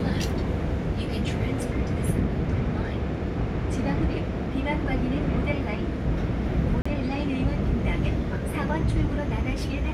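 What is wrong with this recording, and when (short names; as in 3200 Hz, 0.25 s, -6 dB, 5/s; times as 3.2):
6.82–6.86 gap 35 ms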